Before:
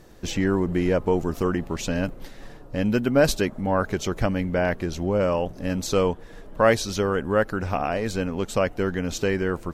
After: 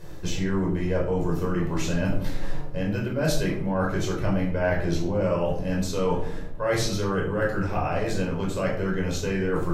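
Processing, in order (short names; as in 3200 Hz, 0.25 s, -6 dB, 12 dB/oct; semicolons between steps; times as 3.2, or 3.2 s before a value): reverse; compressor 6:1, threshold -30 dBFS, peak gain reduction 16.5 dB; reverse; shoebox room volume 810 m³, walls furnished, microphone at 5.1 m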